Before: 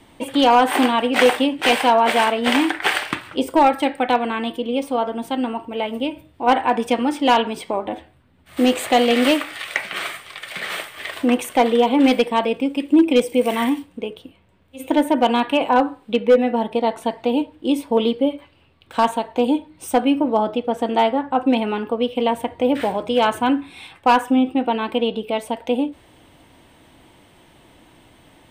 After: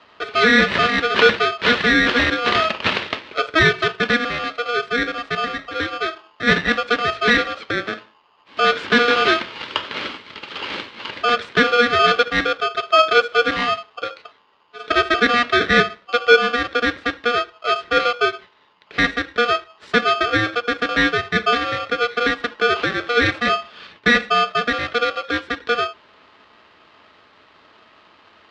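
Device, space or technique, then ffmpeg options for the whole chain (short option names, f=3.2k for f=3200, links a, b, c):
ring modulator pedal into a guitar cabinet: -filter_complex "[0:a]asettb=1/sr,asplit=3[a][b][c];[a]atrim=end=15.294[d];[b]atrim=start=15.29:end=15.82,asetpts=PTS-STARTPTS,afade=t=in:d=0.004:c=qsin,afade=t=out:st=0.526:d=0.004:c=qsin,equalizer=f=180:t=o:w=2:g=4.5[e];[c]atrim=start=15.816[f];[d][e]acrossfade=d=0.004:c1=hsin:c2=qsin[g];[g][f]acrossfade=d=0.004:c1=qsin:c2=hsin,aeval=exprs='val(0)*sgn(sin(2*PI*960*n/s))':c=same,highpass=98,equalizer=f=140:t=q:w=4:g=-8,equalizer=f=430:t=q:w=4:g=3,equalizer=f=740:t=q:w=4:g=-7,lowpass=f=4.1k:w=0.5412,lowpass=f=4.1k:w=1.3066,volume=1dB"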